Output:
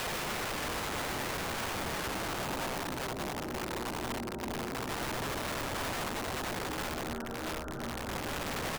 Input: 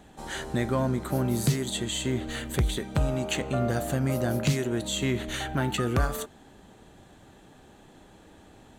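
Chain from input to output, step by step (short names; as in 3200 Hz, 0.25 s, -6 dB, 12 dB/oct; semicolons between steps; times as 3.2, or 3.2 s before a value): steep low-pass 1500 Hz 96 dB/oct; bell 93 Hz -15 dB 0.74 oct; de-hum 55.55 Hz, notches 10; harmoniser -5 st -14 dB; short-mantissa float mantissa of 6-bit; Paulstretch 6.8×, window 0.50 s, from 1.27; wrapped overs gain 31 dB; reverse echo 94 ms -11 dB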